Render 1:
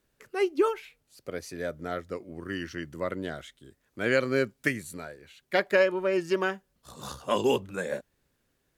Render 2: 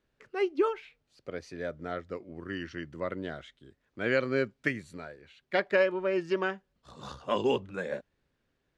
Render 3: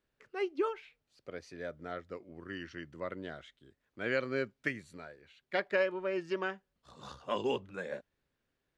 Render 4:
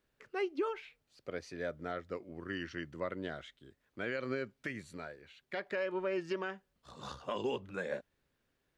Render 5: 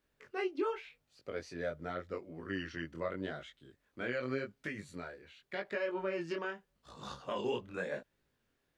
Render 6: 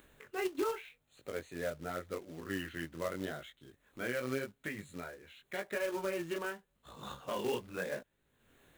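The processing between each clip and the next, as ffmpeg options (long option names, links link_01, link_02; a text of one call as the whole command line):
ffmpeg -i in.wav -af "lowpass=4300,volume=-2.5dB" out.wav
ffmpeg -i in.wav -af "lowshelf=frequency=480:gain=-3,volume=-4dB" out.wav
ffmpeg -i in.wav -af "alimiter=level_in=5dB:limit=-24dB:level=0:latency=1:release=124,volume=-5dB,volume=3dB" out.wav
ffmpeg -i in.wav -af "flanger=delay=19:depth=5.7:speed=0.86,volume=3dB" out.wav
ffmpeg -i in.wav -af "asuperstop=centerf=5200:order=12:qfactor=2.5,acompressor=mode=upward:threshold=-50dB:ratio=2.5,acrusher=bits=3:mode=log:mix=0:aa=0.000001" out.wav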